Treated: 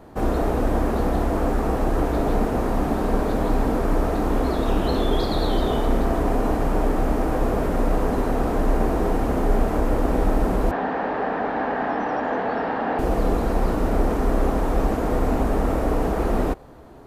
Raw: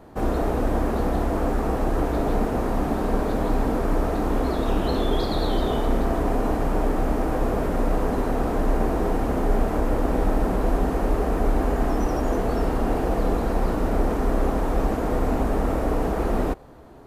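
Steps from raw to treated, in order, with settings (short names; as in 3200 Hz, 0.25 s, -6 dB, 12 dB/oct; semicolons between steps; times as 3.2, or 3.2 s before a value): 10.71–12.99 speaker cabinet 240–3900 Hz, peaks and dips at 360 Hz -8 dB, 840 Hz +6 dB, 1700 Hz +9 dB; gain +1.5 dB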